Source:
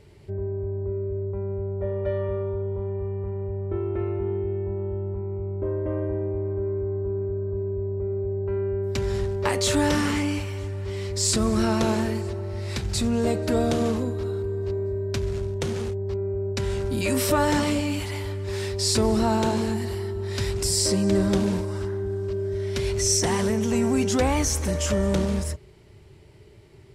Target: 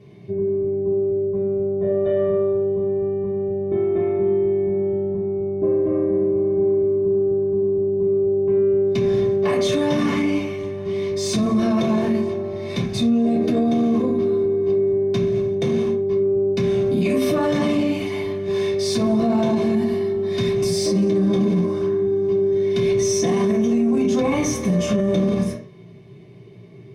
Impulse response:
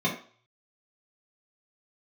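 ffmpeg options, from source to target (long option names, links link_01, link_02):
-filter_complex "[0:a]aeval=exprs='0.376*(cos(1*acos(clip(val(0)/0.376,-1,1)))-cos(1*PI/2))+0.00841*(cos(8*acos(clip(val(0)/0.376,-1,1)))-cos(8*PI/2))':channel_layout=same[link_01];[1:a]atrim=start_sample=2205[link_02];[link_01][link_02]afir=irnorm=-1:irlink=0,alimiter=limit=-5dB:level=0:latency=1:release=25,volume=-7dB"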